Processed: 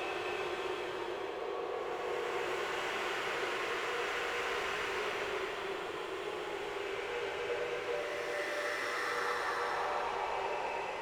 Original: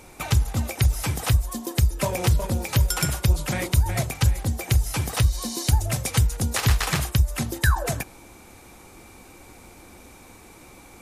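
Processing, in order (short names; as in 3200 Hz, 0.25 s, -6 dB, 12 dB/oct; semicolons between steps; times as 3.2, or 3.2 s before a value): mistuned SSB +250 Hz 170–2900 Hz; soft clip -29 dBFS, distortion -9 dB; on a send: echo with dull and thin repeats by turns 0.333 s, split 820 Hz, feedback 56%, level -3 dB; on the sum: Paulstretch 5.7×, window 0.50 s, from 6.09; gain -3 dB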